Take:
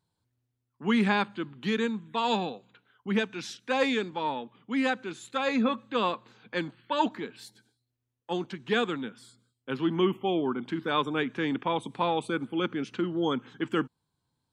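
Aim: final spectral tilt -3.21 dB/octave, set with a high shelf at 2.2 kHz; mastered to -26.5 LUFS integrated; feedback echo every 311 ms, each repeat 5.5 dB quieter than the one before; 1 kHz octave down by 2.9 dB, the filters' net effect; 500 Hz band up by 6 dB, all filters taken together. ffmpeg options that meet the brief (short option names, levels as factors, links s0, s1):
-af "equalizer=f=500:t=o:g=8.5,equalizer=f=1000:t=o:g=-8,highshelf=f=2200:g=7.5,aecho=1:1:311|622|933|1244|1555|1866|2177:0.531|0.281|0.149|0.079|0.0419|0.0222|0.0118,volume=0.944"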